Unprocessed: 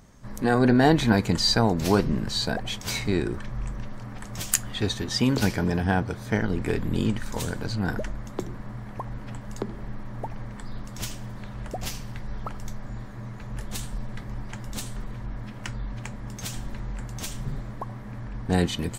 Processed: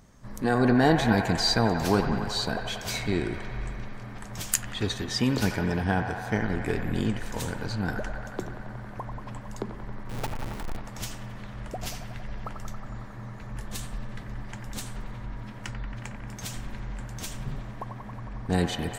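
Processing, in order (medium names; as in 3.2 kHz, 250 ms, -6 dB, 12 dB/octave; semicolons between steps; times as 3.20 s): 10.09–10.77 s: square wave that keeps the level; feedback echo behind a band-pass 91 ms, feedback 83%, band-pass 1.2 kHz, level -6.5 dB; trim -2.5 dB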